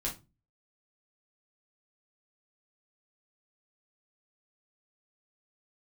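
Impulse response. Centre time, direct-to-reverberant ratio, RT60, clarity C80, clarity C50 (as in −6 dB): 19 ms, −4.0 dB, 0.30 s, 20.0 dB, 11.0 dB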